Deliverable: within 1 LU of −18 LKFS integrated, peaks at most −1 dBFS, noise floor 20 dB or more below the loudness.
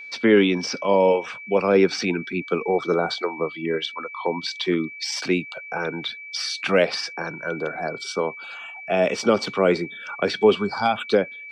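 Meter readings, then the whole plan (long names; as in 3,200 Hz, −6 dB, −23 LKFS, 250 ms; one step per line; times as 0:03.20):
interfering tone 2,300 Hz; level of the tone −36 dBFS; integrated loudness −23.0 LKFS; sample peak −4.5 dBFS; target loudness −18.0 LKFS
→ notch filter 2,300 Hz, Q 30
level +5 dB
brickwall limiter −1 dBFS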